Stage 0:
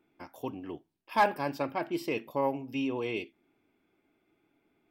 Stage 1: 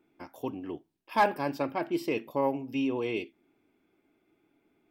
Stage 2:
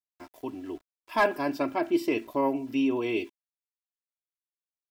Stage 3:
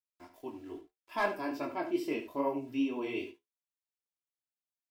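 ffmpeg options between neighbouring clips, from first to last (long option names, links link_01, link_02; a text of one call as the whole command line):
ffmpeg -i in.wav -af "equalizer=frequency=320:width_type=o:width=1.4:gain=3" out.wav
ffmpeg -i in.wav -af "dynaudnorm=framelen=390:gausssize=5:maxgain=5dB,aeval=exprs='val(0)*gte(abs(val(0)),0.00335)':channel_layout=same,aecho=1:1:3:0.58,volume=-3.5dB" out.wav
ffmpeg -i in.wav -af "flanger=delay=20:depth=3.9:speed=2.4,aecho=1:1:73:0.282,flanger=delay=9.3:depth=5:regen=-55:speed=0.76:shape=triangular" out.wav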